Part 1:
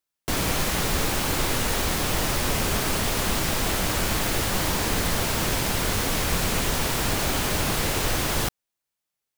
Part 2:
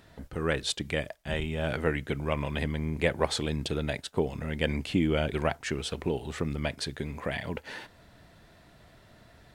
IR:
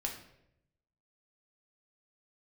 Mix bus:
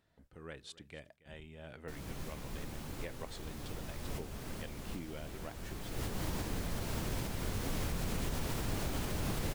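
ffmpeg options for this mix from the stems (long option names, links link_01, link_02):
-filter_complex "[0:a]lowshelf=frequency=480:gain=9.5,adelay=1600,volume=-7dB,afade=type=in:start_time=5.91:duration=0.36:silence=0.334965[link_01];[1:a]volume=-19.5dB,asplit=3[link_02][link_03][link_04];[link_03]volume=-19.5dB[link_05];[link_04]apad=whole_len=484082[link_06];[link_01][link_06]sidechaincompress=threshold=-54dB:ratio=8:attack=43:release=693[link_07];[link_05]aecho=0:1:278:1[link_08];[link_07][link_02][link_08]amix=inputs=3:normalize=0,alimiter=level_in=2.5dB:limit=-24dB:level=0:latency=1:release=403,volume=-2.5dB"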